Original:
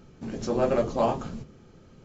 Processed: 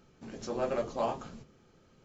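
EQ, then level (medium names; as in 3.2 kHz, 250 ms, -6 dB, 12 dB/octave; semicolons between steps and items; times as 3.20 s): bass shelf 400 Hz -7.5 dB; -5.0 dB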